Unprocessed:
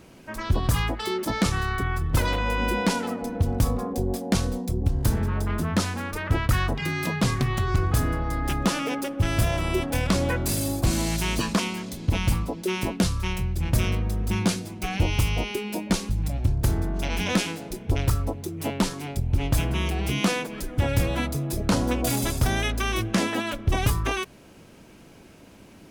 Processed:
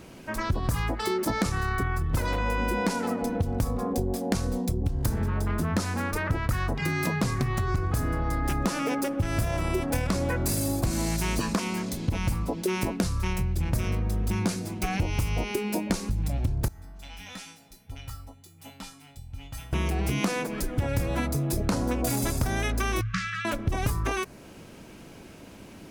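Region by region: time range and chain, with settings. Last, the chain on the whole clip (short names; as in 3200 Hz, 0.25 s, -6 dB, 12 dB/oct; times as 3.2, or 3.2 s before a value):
16.68–19.73 bell 320 Hz -15 dB 1.3 oct + resonator 270 Hz, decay 0.36 s, harmonics odd, mix 90%
23.01–23.45 brick-wall FIR band-stop 180–1100 Hz + air absorption 140 m
whole clip: dynamic EQ 3200 Hz, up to -7 dB, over -48 dBFS, Q 2.1; compressor, threshold -26 dBFS; gain +3 dB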